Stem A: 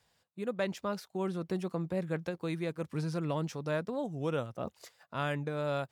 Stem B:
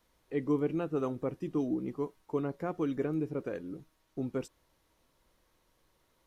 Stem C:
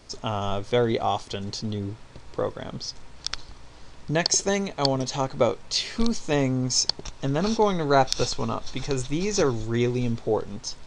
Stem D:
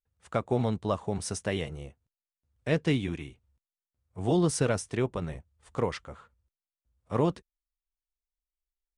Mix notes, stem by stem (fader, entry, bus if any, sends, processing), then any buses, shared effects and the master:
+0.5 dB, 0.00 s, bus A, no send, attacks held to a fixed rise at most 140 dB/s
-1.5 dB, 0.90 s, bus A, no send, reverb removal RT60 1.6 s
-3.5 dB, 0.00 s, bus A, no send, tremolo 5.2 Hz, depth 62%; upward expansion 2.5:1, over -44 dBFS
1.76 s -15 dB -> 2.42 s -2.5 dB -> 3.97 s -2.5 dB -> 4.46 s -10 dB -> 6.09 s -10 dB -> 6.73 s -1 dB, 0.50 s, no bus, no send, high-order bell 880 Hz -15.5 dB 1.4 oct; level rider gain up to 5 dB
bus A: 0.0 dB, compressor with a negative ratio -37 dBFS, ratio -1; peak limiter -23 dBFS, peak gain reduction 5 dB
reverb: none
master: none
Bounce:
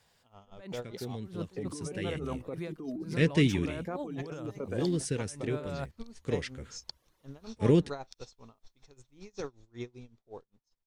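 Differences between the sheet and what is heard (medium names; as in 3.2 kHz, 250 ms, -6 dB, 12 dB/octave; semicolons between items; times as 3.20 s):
stem B: entry 0.90 s -> 1.25 s; stem C -3.5 dB -> -14.0 dB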